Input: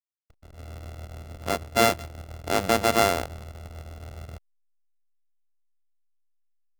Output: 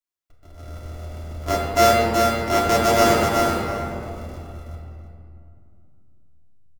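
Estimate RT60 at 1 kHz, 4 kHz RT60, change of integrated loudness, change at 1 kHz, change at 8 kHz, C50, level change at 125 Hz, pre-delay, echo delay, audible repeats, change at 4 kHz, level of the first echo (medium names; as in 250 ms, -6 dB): 2.5 s, 1.4 s, +5.0 dB, +7.5 dB, +4.5 dB, -2.0 dB, +7.5 dB, 3 ms, 374 ms, 1, +4.0 dB, -3.0 dB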